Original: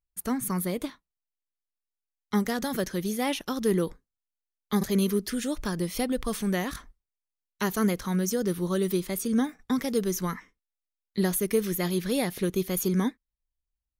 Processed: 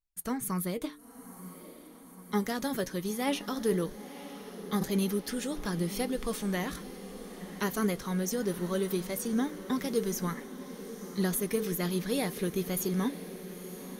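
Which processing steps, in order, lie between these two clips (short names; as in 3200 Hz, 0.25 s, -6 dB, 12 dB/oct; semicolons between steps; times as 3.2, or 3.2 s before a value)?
de-hum 147.2 Hz, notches 3; flange 0.18 Hz, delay 6 ms, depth 1.4 ms, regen +62%; diffused feedback echo 0.962 s, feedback 71%, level -13.5 dB; gain +1 dB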